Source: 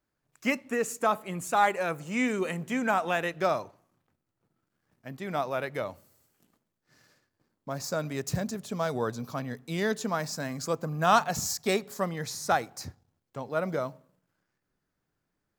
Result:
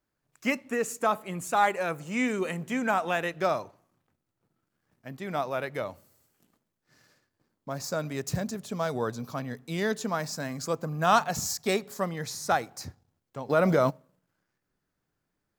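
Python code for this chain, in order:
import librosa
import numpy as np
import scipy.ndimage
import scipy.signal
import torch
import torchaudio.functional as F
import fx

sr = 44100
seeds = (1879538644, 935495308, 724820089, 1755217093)

y = fx.env_flatten(x, sr, amount_pct=70, at=(13.49, 13.89), fade=0.02)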